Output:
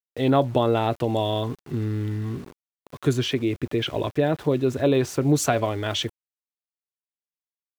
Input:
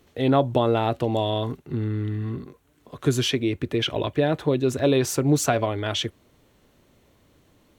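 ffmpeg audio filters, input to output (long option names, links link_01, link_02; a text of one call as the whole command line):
ffmpeg -i in.wav -filter_complex "[0:a]asettb=1/sr,asplit=3[link_01][link_02][link_03];[link_01]atrim=end=3.134[link_04];[link_02]atrim=start=3.13:end=5.26,asetpts=PTS-STARTPTS,afade=type=in:duration=0.004:curve=qsin,afade=type=out:start_time=2.126:duration=0.004:curve=qsin,highshelf=frequency=5100:gain=-11.5[link_05];[link_03]atrim=start=5.256[link_06];[link_04][link_05]acrossfade=duration=0.004:curve1=hsin:curve2=qsin[link_07];[link_07][link_06]acrossfade=duration=0.004:curve1=qsin:curve2=hsin,aeval=exprs='val(0)*gte(abs(val(0)),0.00841)':channel_layout=same" out.wav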